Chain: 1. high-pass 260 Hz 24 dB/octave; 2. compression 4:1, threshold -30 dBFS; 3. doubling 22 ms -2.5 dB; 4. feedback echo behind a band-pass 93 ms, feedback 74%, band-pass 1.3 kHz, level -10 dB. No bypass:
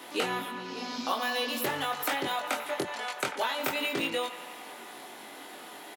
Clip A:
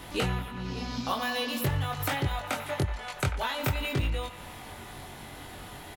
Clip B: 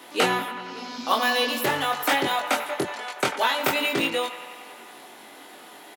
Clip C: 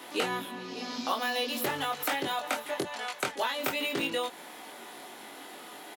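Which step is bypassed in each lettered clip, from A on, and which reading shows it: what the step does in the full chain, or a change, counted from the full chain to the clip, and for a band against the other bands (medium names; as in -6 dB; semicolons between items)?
1, 125 Hz band +20.5 dB; 2, momentary loudness spread change +7 LU; 4, echo-to-direct -8.0 dB to none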